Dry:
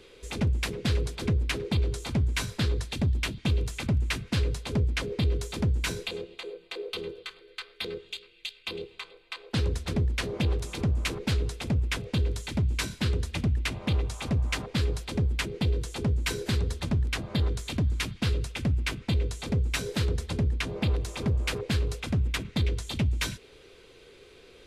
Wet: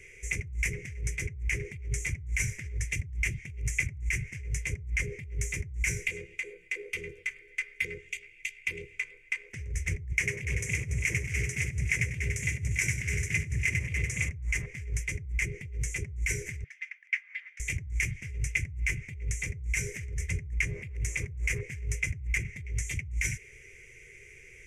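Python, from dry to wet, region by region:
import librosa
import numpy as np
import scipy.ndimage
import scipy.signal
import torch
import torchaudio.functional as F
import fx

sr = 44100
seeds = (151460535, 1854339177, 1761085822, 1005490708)

y = fx.chain(x, sr, fx.highpass(hz=100.0, slope=12),
    fx.echo_heads(ms=96, heads='first and third', feedback_pct=45, wet_db=-8.0), at=(10.12, 14.29))
y = fx.chain(y, sr, fx.highpass(hz=1500.0, slope=24),
    fx.air_absorb(metres=330.0), at=(16.64, 17.6))
y = fx.over_compress(y, sr, threshold_db=-30.0, ratio=-0.5)
y = fx.curve_eq(y, sr, hz=(140.0, 260.0, 390.0, 810.0, 1400.0, 2100.0, 4100.0, 6000.0, 14000.0), db=(0, -20, -9, -25, -16, 13, -29, 6, -5))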